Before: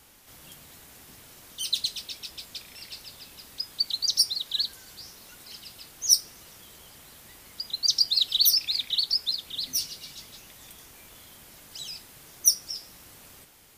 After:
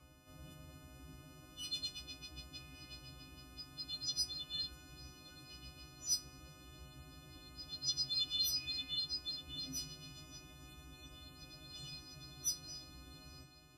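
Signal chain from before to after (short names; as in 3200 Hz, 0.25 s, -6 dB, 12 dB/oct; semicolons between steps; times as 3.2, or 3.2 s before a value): frequency quantiser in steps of 3 st; octave resonator C#, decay 0.15 s; delay with a stepping band-pass 0.706 s, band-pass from 510 Hz, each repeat 0.7 oct, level -8 dB; gain +12 dB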